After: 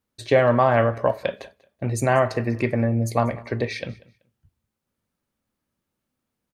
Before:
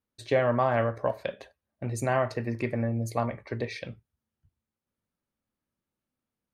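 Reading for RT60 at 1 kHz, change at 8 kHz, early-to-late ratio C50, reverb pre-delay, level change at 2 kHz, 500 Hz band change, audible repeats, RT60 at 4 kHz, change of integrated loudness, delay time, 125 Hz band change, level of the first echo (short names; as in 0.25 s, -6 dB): none, +7.0 dB, none, none, +7.0 dB, +7.0 dB, 1, none, +7.0 dB, 0.191 s, +7.0 dB, -22.0 dB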